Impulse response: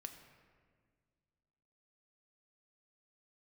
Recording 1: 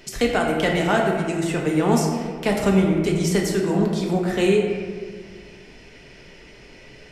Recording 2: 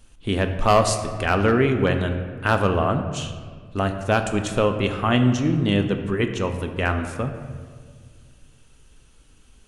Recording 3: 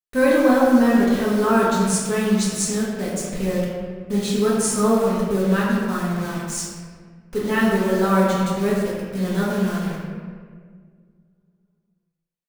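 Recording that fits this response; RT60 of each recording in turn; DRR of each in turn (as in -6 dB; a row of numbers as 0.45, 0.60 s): 2; 1.8, 1.8, 1.7 s; -1.5, 5.5, -7.5 dB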